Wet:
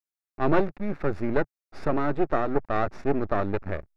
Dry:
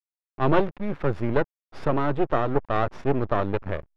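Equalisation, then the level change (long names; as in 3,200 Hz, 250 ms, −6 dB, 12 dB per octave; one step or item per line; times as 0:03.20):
thirty-one-band graphic EQ 125 Hz −10 dB, 500 Hz −4 dB, 1,000 Hz −6 dB, 3,150 Hz −10 dB
0.0 dB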